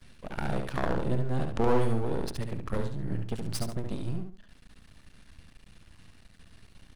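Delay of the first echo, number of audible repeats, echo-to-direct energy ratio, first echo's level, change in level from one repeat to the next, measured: 70 ms, 2, -5.0 dB, -5.5 dB, -10.5 dB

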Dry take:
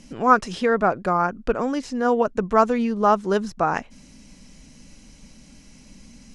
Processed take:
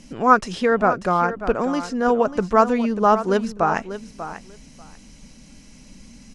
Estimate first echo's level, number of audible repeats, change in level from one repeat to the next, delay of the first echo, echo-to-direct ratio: -12.0 dB, 2, -16.5 dB, 0.591 s, -12.0 dB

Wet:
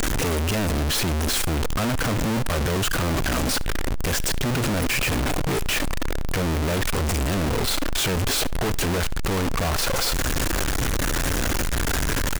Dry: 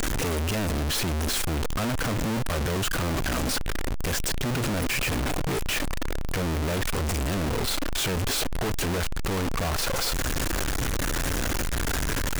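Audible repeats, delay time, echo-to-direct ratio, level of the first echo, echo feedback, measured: 1, 71 ms, -23.5 dB, -24.0 dB, no steady repeat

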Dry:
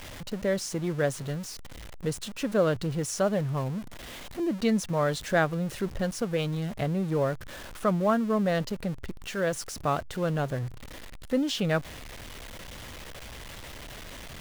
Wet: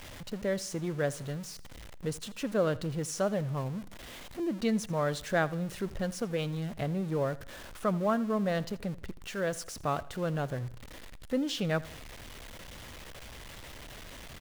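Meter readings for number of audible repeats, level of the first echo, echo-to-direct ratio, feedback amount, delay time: 2, -20.0 dB, -19.0 dB, 42%, 82 ms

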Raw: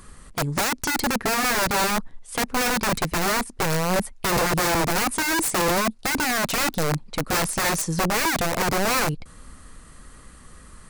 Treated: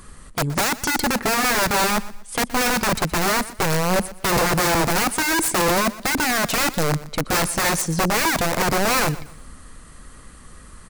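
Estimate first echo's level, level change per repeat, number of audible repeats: -17.5 dB, -10.5 dB, 2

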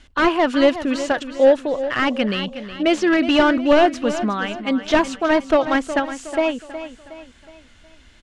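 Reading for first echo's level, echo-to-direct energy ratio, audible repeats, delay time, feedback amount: -12.0 dB, -11.0 dB, 4, 0.366 s, 43%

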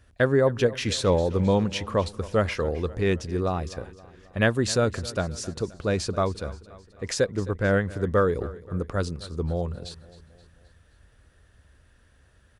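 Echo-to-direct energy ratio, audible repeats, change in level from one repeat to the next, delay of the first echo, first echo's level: -17.0 dB, 3, -5.5 dB, 0.263 s, -18.5 dB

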